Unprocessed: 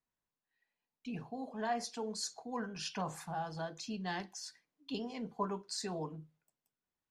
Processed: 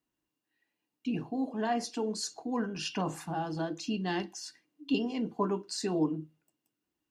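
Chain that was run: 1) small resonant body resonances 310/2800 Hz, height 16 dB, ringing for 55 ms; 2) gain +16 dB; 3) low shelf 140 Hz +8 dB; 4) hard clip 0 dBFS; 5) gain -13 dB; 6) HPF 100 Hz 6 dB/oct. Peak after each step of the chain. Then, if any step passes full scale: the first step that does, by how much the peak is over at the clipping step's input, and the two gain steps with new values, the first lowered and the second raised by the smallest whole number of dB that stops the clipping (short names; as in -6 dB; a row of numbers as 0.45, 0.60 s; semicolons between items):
-21.5, -5.5, -4.5, -4.5, -17.5, -18.0 dBFS; no overload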